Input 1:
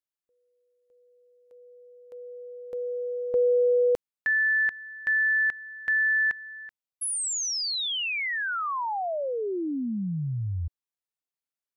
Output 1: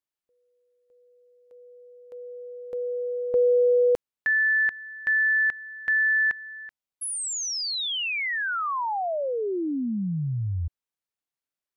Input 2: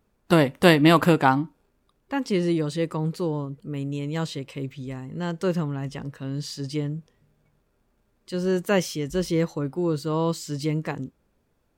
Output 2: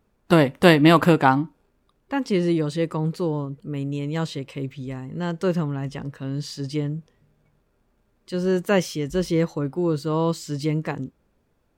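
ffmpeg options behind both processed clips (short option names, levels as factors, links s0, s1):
-af "highshelf=f=4600:g=-4,volume=1.26"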